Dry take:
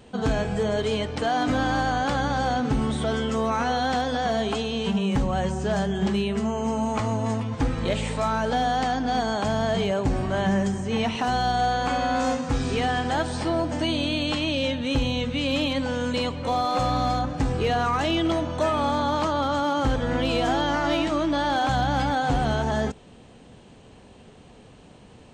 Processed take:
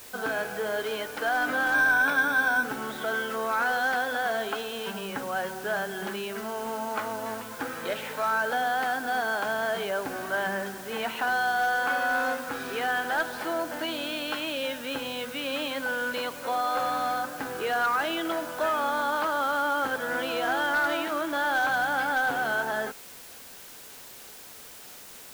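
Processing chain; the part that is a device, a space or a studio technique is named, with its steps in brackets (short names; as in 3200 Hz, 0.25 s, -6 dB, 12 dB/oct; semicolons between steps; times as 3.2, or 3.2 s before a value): drive-through speaker (BPF 400–3800 Hz; bell 1500 Hz +12 dB 0.32 oct; hard clip -16 dBFS, distortion -25 dB; white noise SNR 17 dB); 1.74–2.64 ripple EQ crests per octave 1.6, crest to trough 12 dB; gain -3.5 dB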